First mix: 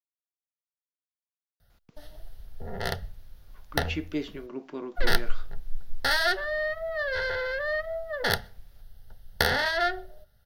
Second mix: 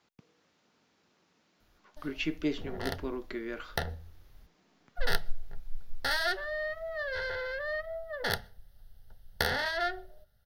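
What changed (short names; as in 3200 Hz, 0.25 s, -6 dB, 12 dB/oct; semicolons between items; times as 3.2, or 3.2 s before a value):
speech: entry -1.70 s; background -5.5 dB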